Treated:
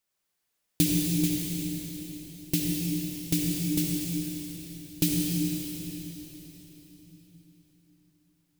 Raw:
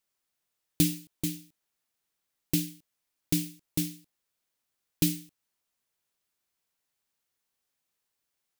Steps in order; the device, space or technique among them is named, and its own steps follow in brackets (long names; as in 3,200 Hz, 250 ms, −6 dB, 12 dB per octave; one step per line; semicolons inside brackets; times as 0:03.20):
cathedral (convolution reverb RT60 4.3 s, pre-delay 62 ms, DRR −2.5 dB)